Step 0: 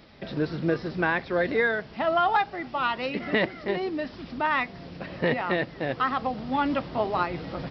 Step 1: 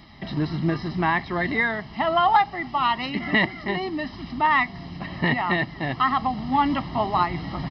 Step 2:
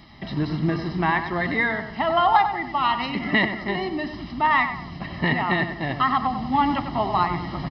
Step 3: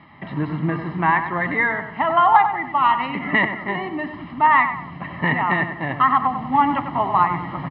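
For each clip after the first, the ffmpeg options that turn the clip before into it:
-af "aecho=1:1:1:0.82,volume=2dB"
-filter_complex "[0:a]asplit=2[a][b];[b]adelay=96,lowpass=f=2.3k:p=1,volume=-8dB,asplit=2[c][d];[d]adelay=96,lowpass=f=2.3k:p=1,volume=0.45,asplit=2[e][f];[f]adelay=96,lowpass=f=2.3k:p=1,volume=0.45,asplit=2[g][h];[h]adelay=96,lowpass=f=2.3k:p=1,volume=0.45,asplit=2[i][j];[j]adelay=96,lowpass=f=2.3k:p=1,volume=0.45[k];[a][c][e][g][i][k]amix=inputs=6:normalize=0"
-af "highpass=130,equalizer=f=220:t=q:w=4:g=-6,equalizer=f=370:t=q:w=4:g=-6,equalizer=f=690:t=q:w=4:g=-4,equalizer=f=1k:t=q:w=4:g=4,lowpass=f=2.5k:w=0.5412,lowpass=f=2.5k:w=1.3066,volume=3.5dB"

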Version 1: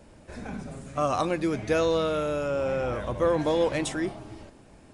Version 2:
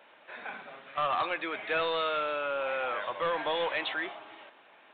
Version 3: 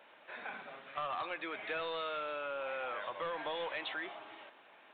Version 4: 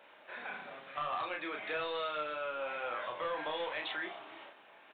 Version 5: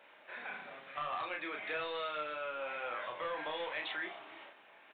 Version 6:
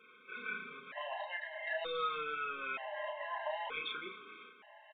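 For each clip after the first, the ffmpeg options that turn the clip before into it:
-af "highpass=1k,aresample=8000,asoftclip=type=tanh:threshold=-29dB,aresample=44100,volume=6dB"
-af "acompressor=threshold=-36dB:ratio=2.5,volume=-2.5dB"
-filter_complex "[0:a]asplit=2[a][b];[b]adelay=33,volume=-4dB[c];[a][c]amix=inputs=2:normalize=0"
-af "equalizer=f=2.1k:t=o:w=0.75:g=3.5,volume=-2.5dB"
-af "aresample=8000,aresample=44100,aecho=1:1:4.7:0.69,afftfilt=real='re*gt(sin(2*PI*0.54*pts/sr)*(1-2*mod(floor(b*sr/1024/530),2)),0)':imag='im*gt(sin(2*PI*0.54*pts/sr)*(1-2*mod(floor(b*sr/1024/530),2)),0)':win_size=1024:overlap=0.75,volume=2dB"

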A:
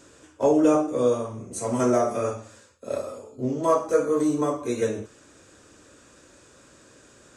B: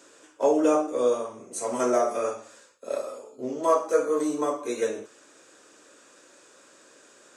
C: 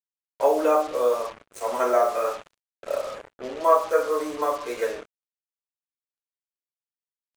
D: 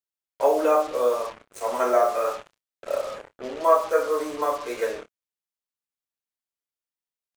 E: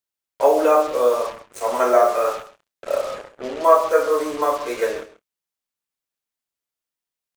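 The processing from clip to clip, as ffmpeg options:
-af "highpass=360"
-filter_complex "[0:a]acrossover=split=480 2700:gain=0.141 1 0.178[a][b][c];[a][b][c]amix=inputs=3:normalize=0,acrusher=bits=6:mix=0:aa=0.5,volume=5.5dB"
-filter_complex "[0:a]asplit=2[a][b];[b]adelay=28,volume=-13.5dB[c];[a][c]amix=inputs=2:normalize=0"
-af "aecho=1:1:134:0.158,volume=4.5dB"

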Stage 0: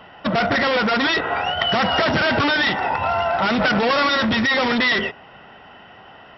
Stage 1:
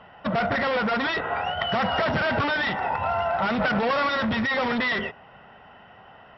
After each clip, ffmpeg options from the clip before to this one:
-af "lowpass=f=1.8k:p=1,equalizer=f=320:w=2.1:g=-6.5,volume=-3dB"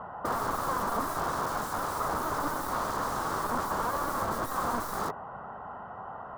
-af "aeval=exprs='(mod(26.6*val(0)+1,2)-1)/26.6':c=same,highshelf=f=1.7k:t=q:w=3:g=-13.5,volume=4.5dB"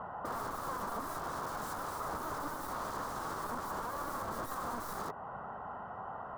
-af "alimiter=level_in=3.5dB:limit=-24dB:level=0:latency=1:release=216,volume=-3.5dB,volume=-2dB"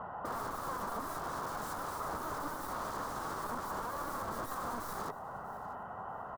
-af "aecho=1:1:643|1286:0.112|0.0281"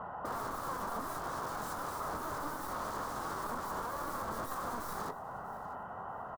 -filter_complex "[0:a]asplit=2[a][b];[b]adelay=23,volume=-11dB[c];[a][c]amix=inputs=2:normalize=0"

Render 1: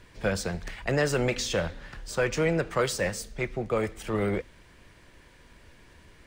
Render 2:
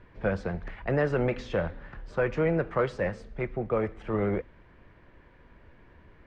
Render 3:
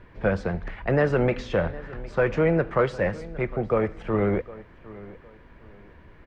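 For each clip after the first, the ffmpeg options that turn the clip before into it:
-af "lowpass=1.7k"
-filter_complex "[0:a]asplit=2[a][b];[b]adelay=759,lowpass=f=4.5k:p=1,volume=-18.5dB,asplit=2[c][d];[d]adelay=759,lowpass=f=4.5k:p=1,volume=0.29[e];[a][c][e]amix=inputs=3:normalize=0,volume=4.5dB"

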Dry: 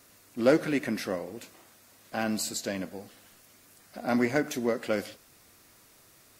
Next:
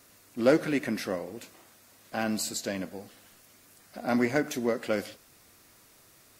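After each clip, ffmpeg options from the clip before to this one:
-af anull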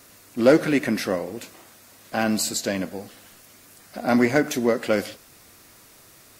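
-af "acontrast=88"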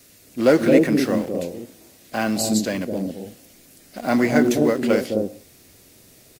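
-filter_complex "[0:a]acrossover=split=700|1600[a][b][c];[a]aecho=1:1:215.7|262.4:0.794|0.891[d];[b]acrusher=bits=6:mix=0:aa=0.000001[e];[d][e][c]amix=inputs=3:normalize=0"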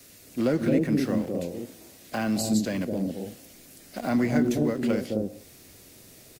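-filter_complex "[0:a]acrossover=split=220[a][b];[b]acompressor=threshold=-31dB:ratio=2.5[c];[a][c]amix=inputs=2:normalize=0"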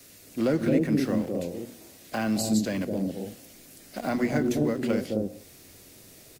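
-af "bandreject=f=60:t=h:w=6,bandreject=f=120:t=h:w=6,bandreject=f=180:t=h:w=6,bandreject=f=240:t=h:w=6"

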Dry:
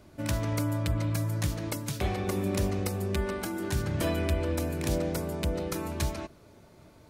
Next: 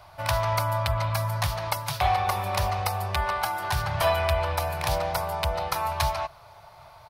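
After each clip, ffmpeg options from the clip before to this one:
-af "firequalizer=gain_entry='entry(130,0);entry(240,-24);entry(730,14);entry(1000,14);entry(1600,6);entry(4800,7);entry(7100,-4);entry(11000,4)':delay=0.05:min_phase=1,volume=1.5dB"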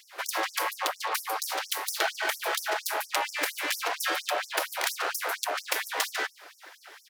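-af "acompressor=threshold=-25dB:ratio=6,aeval=exprs='abs(val(0))':c=same,afftfilt=real='re*gte(b*sr/1024,290*pow(5300/290,0.5+0.5*sin(2*PI*4.3*pts/sr)))':imag='im*gte(b*sr/1024,290*pow(5300/290,0.5+0.5*sin(2*PI*4.3*pts/sr)))':win_size=1024:overlap=0.75,volume=7dB"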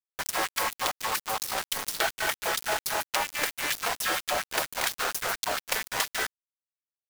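-af "acrusher=bits=4:mix=0:aa=0.000001"

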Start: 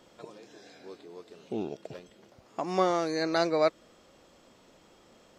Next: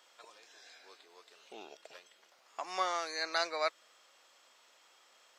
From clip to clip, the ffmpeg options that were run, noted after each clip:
-af "highpass=1.1k"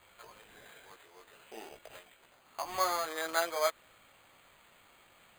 -filter_complex "[0:a]acrossover=split=3000[a][b];[b]acompressor=threshold=-54dB:ratio=4:attack=1:release=60[c];[a][c]amix=inputs=2:normalize=0,flanger=delay=17.5:depth=2.2:speed=0.53,acrusher=samples=8:mix=1:aa=0.000001,volume=5.5dB"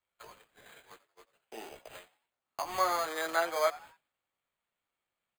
-filter_complex "[0:a]agate=range=-29dB:threshold=-54dB:ratio=16:detection=peak,acrossover=split=360|440|2800[a][b][c][d];[d]alimiter=level_in=6dB:limit=-24dB:level=0:latency=1:release=235,volume=-6dB[e];[a][b][c][e]amix=inputs=4:normalize=0,asplit=4[f][g][h][i];[g]adelay=89,afreqshift=110,volume=-19.5dB[j];[h]adelay=178,afreqshift=220,volume=-28.1dB[k];[i]adelay=267,afreqshift=330,volume=-36.8dB[l];[f][j][k][l]amix=inputs=4:normalize=0,volume=2dB"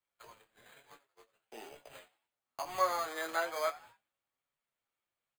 -filter_complex "[0:a]flanger=delay=6.9:depth=2.3:regen=51:speed=1.1:shape=sinusoidal,asplit=2[a][b];[b]adelay=27,volume=-13.5dB[c];[a][c]amix=inputs=2:normalize=0"

